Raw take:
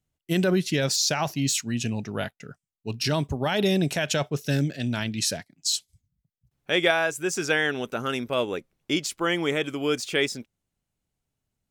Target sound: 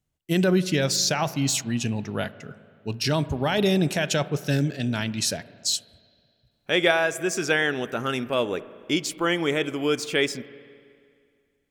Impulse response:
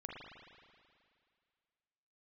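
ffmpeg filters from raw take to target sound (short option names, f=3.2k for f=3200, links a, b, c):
-filter_complex "[0:a]asplit=2[a][b];[1:a]atrim=start_sample=2205,highshelf=f=2.9k:g=-10.5[c];[b][c]afir=irnorm=-1:irlink=0,volume=-9dB[d];[a][d]amix=inputs=2:normalize=0"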